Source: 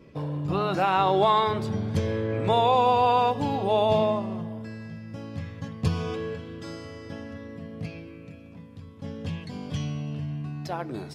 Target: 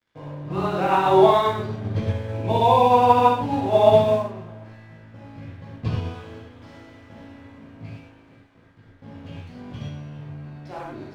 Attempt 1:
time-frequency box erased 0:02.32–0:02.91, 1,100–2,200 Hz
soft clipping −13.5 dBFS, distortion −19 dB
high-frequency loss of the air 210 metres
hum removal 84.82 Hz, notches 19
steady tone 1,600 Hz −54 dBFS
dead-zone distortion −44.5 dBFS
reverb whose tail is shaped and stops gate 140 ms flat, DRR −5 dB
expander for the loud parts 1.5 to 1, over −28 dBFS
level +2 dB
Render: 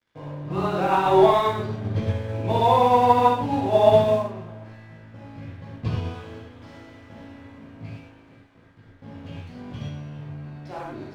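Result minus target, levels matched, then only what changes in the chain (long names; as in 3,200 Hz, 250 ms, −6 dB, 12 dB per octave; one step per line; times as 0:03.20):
soft clipping: distortion +13 dB
change: soft clipping −6 dBFS, distortion −32 dB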